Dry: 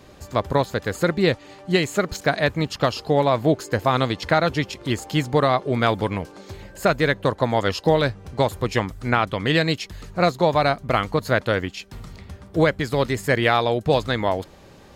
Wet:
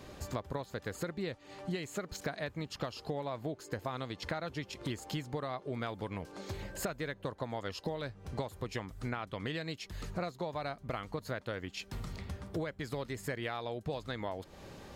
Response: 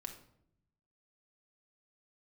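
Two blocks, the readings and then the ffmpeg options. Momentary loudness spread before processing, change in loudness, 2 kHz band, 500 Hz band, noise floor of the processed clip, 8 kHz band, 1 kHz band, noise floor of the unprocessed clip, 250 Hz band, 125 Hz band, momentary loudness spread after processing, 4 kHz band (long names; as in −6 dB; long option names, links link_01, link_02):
9 LU, −18.0 dB, −18.0 dB, −18.5 dB, −57 dBFS, −11.0 dB, −19.0 dB, −47 dBFS, −16.5 dB, −16.0 dB, 4 LU, −17.0 dB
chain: -af "acompressor=threshold=-32dB:ratio=10,volume=-2.5dB"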